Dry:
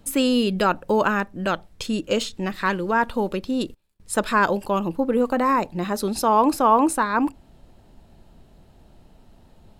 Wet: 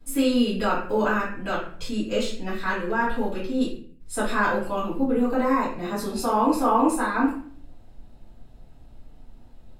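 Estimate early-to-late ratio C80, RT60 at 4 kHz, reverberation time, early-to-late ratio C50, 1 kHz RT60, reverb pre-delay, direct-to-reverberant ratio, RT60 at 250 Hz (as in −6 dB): 8.5 dB, 0.40 s, 0.50 s, 3.5 dB, 0.45 s, 3 ms, −11.5 dB, 0.65 s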